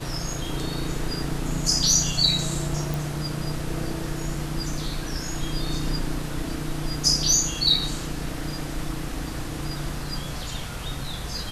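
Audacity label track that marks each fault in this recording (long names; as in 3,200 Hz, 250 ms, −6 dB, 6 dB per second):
2.940000	2.940000	click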